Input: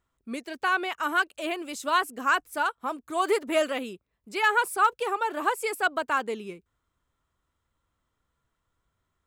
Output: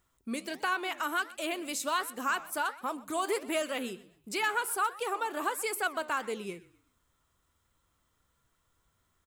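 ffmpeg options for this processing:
-filter_complex "[0:a]highshelf=f=4.6k:g=9,acompressor=threshold=-38dB:ratio=2,flanger=delay=5.4:depth=7.7:regen=86:speed=1.4:shape=sinusoidal,asplit=2[a][b];[b]asplit=3[c][d][e];[c]adelay=125,afreqshift=-32,volume=-20dB[f];[d]adelay=250,afreqshift=-64,volume=-29.4dB[g];[e]adelay=375,afreqshift=-96,volume=-38.7dB[h];[f][g][h]amix=inputs=3:normalize=0[i];[a][i]amix=inputs=2:normalize=0,volume=7dB"

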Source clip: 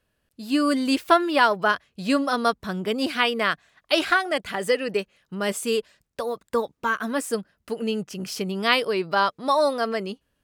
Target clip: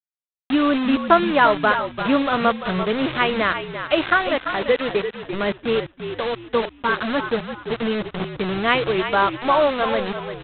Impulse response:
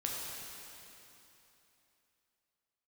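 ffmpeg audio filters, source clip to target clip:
-filter_complex "[0:a]lowpass=2.4k,aresample=8000,acrusher=bits=4:mix=0:aa=0.000001,aresample=44100,asplit=5[a][b][c][d][e];[b]adelay=342,afreqshift=-53,volume=-9dB[f];[c]adelay=684,afreqshift=-106,volume=-18.9dB[g];[d]adelay=1026,afreqshift=-159,volume=-28.8dB[h];[e]adelay=1368,afreqshift=-212,volume=-38.7dB[i];[a][f][g][h][i]amix=inputs=5:normalize=0,volume=3dB"

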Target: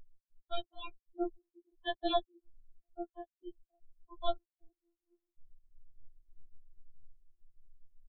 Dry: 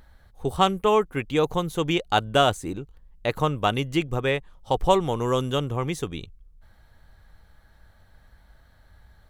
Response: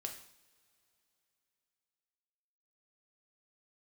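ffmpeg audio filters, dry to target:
-af "aeval=exprs='val(0)+0.5*0.112*sgn(val(0))':c=same,asetrate=50715,aresample=44100,agate=range=-45dB:threshold=-13dB:ratio=16:detection=peak,equalizer=f=1.5k:t=o:w=2.6:g=-15,alimiter=level_in=5dB:limit=-24dB:level=0:latency=1:release=104,volume=-5dB,areverse,acompressor=mode=upward:threshold=-58dB:ratio=2.5,areverse,afftfilt=real='re*gte(hypot(re,im),0.00562)':imag='im*gte(hypot(re,im),0.00562)':win_size=1024:overlap=0.75,aresample=8000,aresample=44100,afftfilt=real='re*4*eq(mod(b,16),0)':imag='im*4*eq(mod(b,16),0)':win_size=2048:overlap=0.75,volume=15.5dB"

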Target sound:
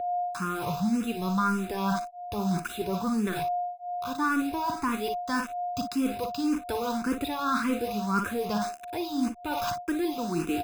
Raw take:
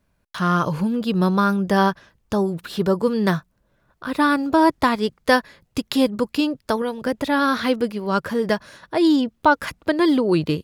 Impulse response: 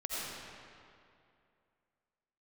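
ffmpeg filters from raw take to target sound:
-filter_complex "[0:a]dynaudnorm=f=230:g=7:m=14dB,agate=range=-33dB:threshold=-41dB:ratio=3:detection=peak,asplit=2[a][b];[b]lowpass=f=1.5k:w=0.5412,lowpass=f=1.5k:w=1.3066[c];[1:a]atrim=start_sample=2205,atrim=end_sample=6174[d];[c][d]afir=irnorm=-1:irlink=0,volume=-20dB[e];[a][e]amix=inputs=2:normalize=0,asoftclip=type=tanh:threshold=-5.5dB,acrusher=bits=4:mix=0:aa=0.000001,equalizer=f=150:w=5.5:g=-8.5,aecho=1:1:0.8:0.63,aecho=1:1:43|57:0.2|0.299,aeval=exprs='val(0)+0.0708*sin(2*PI*710*n/s)':c=same,areverse,acompressor=threshold=-23dB:ratio=4,areverse,asplit=2[f][g];[g]afreqshift=1.8[h];[f][h]amix=inputs=2:normalize=1,volume=-1.5dB"

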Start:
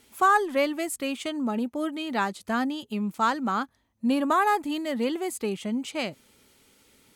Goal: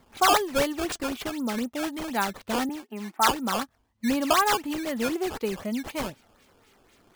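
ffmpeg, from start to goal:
-filter_complex "[0:a]asettb=1/sr,asplit=3[a][b][c];[a]atrim=end=2.694[d];[b]atrim=start=2.69:end=3.31,asetpts=PTS-STARTPTS,afade=t=in:d=0.004:c=qsin,afade=t=out:st=0.616:d=0.004:c=qsin,highpass=f=240:w=0.5412,highpass=f=240:w=1.3066,equalizer=f=500:t=q:w=4:g=-7,equalizer=f=800:t=q:w=4:g=9,equalizer=f=1.7k:t=q:w=4:g=7,lowpass=f=2.2k:w=0.5412,lowpass=f=2.2k:w=1.3066[e];[c]atrim=start=3.306[f];[d][e]acrossfade=d=0.004:c1=hsin:c2=qsin[g];[g][f]acrossfade=d=0.004:c1=qsin:c2=hsin,acrusher=samples=13:mix=1:aa=0.000001:lfo=1:lforange=20.8:lforate=4,flanger=delay=0.9:depth=2.1:regen=66:speed=0.5:shape=triangular,volume=4.5dB"

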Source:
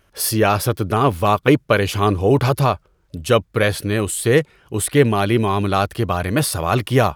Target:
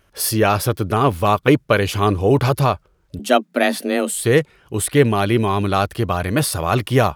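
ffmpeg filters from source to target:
-filter_complex "[0:a]asettb=1/sr,asplit=3[a][b][c];[a]atrim=end=3.194[d];[b]atrim=start=3.19:end=4.14,asetpts=PTS-STARTPTS,afade=t=in:d=0.004:c=qsin,afade=t=out:st=0.946:d=0.004:c=qsin,afreqshift=130[e];[c]atrim=start=4.136[f];[d][e]acrossfade=d=0.004:c1=hsin:c2=qsin[g];[g][f]acrossfade=d=0.004:c1=qsin:c2=hsin"

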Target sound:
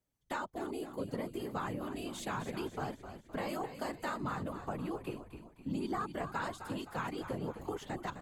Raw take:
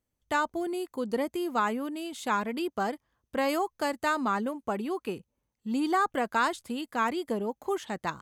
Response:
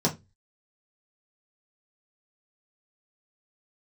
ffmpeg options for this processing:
-filter_complex "[0:a]afftfilt=real='hypot(re,im)*cos(2*PI*random(0))':imag='hypot(re,im)*sin(2*PI*random(1))':win_size=512:overlap=0.75,acrossover=split=150[a][b];[b]acompressor=threshold=-43dB:ratio=2.5[c];[a][c]amix=inputs=2:normalize=0,asplit=6[d][e][f][g][h][i];[e]adelay=258,afreqshift=-57,volume=-10dB[j];[f]adelay=516,afreqshift=-114,volume=-16.4dB[k];[g]adelay=774,afreqshift=-171,volume=-22.8dB[l];[h]adelay=1032,afreqshift=-228,volume=-29.1dB[m];[i]adelay=1290,afreqshift=-285,volume=-35.5dB[n];[d][j][k][l][m][n]amix=inputs=6:normalize=0,volume=3.5dB"

